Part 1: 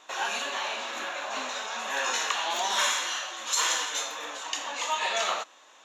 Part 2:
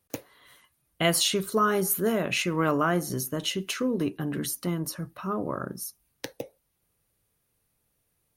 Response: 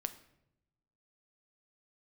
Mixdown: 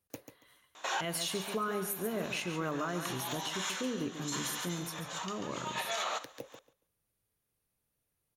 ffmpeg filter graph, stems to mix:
-filter_complex "[0:a]bandreject=f=2.7k:w=21,adelay=750,volume=1.5dB,asplit=2[a][b];[b]volume=-22.5dB[c];[1:a]volume=-9dB,asplit=3[d][e][f];[e]volume=-9.5dB[g];[f]apad=whole_len=290619[h];[a][h]sidechaincompress=threshold=-50dB:ratio=12:attack=12:release=181[i];[c][g]amix=inputs=2:normalize=0,aecho=0:1:140|280|420:1|0.19|0.0361[j];[i][d][j]amix=inputs=3:normalize=0,alimiter=level_in=0.5dB:limit=-24dB:level=0:latency=1:release=153,volume=-0.5dB"

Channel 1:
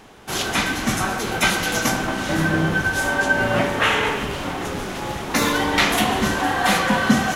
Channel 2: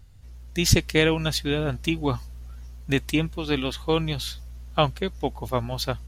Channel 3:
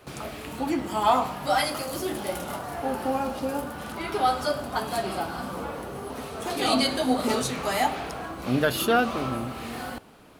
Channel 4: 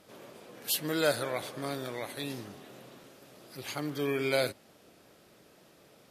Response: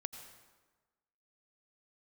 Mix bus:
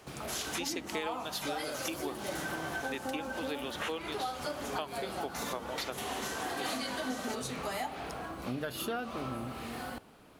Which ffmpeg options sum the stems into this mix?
-filter_complex "[0:a]bass=f=250:g=-13,treble=f=4k:g=7,volume=-13dB[a];[1:a]highpass=f=290:w=0.5412,highpass=f=290:w=1.3066,volume=-6dB,asplit=2[b][c];[2:a]volume=-5.5dB[d];[3:a]adelay=650,volume=-10.5dB[e];[c]apad=whole_len=324540[f];[a][f]sidechaincompress=threshold=-42dB:ratio=8:attack=31:release=236[g];[g][b][d][e]amix=inputs=4:normalize=0,acompressor=threshold=-33dB:ratio=6"

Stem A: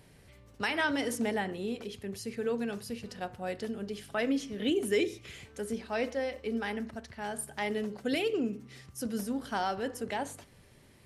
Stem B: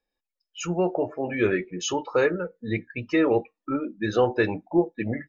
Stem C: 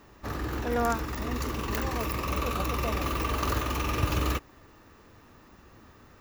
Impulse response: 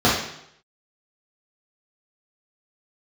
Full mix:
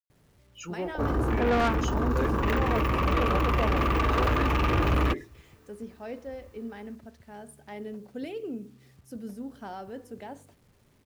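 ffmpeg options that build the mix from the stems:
-filter_complex "[0:a]tiltshelf=f=970:g=5.5,adelay=100,volume=-9dB[a];[1:a]volume=-9.5dB[b];[2:a]afwtdn=0.0141,acontrast=84,adelay=750,volume=1.5dB[c];[a][b][c]amix=inputs=3:normalize=0,acrusher=bits=10:mix=0:aa=0.000001,asoftclip=type=tanh:threshold=-19.5dB"

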